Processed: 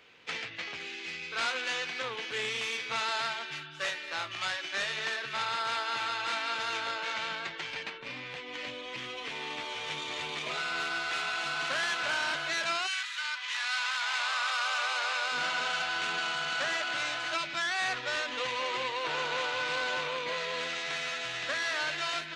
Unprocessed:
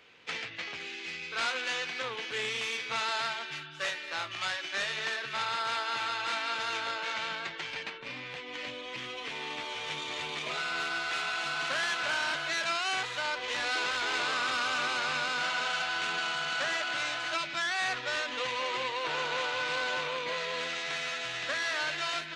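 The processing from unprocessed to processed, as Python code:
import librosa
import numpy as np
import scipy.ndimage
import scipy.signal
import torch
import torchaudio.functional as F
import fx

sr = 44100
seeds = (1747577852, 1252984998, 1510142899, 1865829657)

y = fx.highpass(x, sr, hz=fx.line((12.86, 1500.0), (15.31, 430.0)), slope=24, at=(12.86, 15.31), fade=0.02)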